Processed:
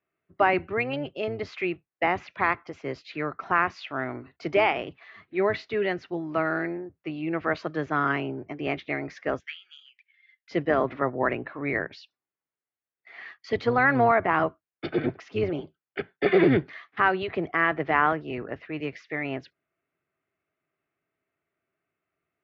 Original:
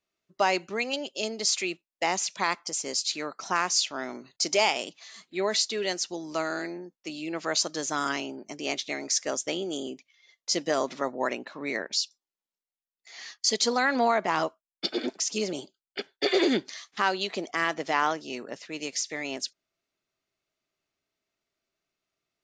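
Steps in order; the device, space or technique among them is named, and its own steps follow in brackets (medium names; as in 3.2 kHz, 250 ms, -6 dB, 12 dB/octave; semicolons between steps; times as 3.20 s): 9.39–10.51 s: elliptic high-pass 1.6 kHz, stop band 60 dB; sub-octave bass pedal (octave divider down 1 oct, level -3 dB; cabinet simulation 89–2200 Hz, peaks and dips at 120 Hz -3 dB, 210 Hz -7 dB, 560 Hz -4 dB, 910 Hz -5 dB); trim +5.5 dB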